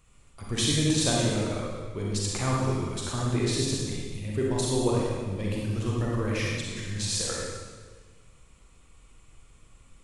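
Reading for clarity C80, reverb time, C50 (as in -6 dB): 0.5 dB, 1.5 s, -2.0 dB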